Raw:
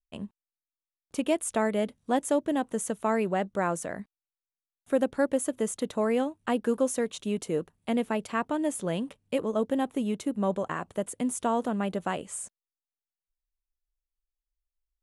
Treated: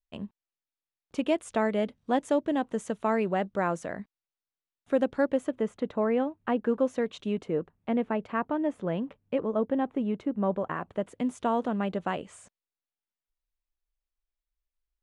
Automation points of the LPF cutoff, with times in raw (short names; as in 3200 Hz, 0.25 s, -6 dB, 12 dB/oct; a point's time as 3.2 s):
5.16 s 4700 Hz
5.71 s 2200 Hz
6.63 s 2200 Hz
7.23 s 3800 Hz
7.53 s 2000 Hz
10.57 s 2000 Hz
11.3 s 3900 Hz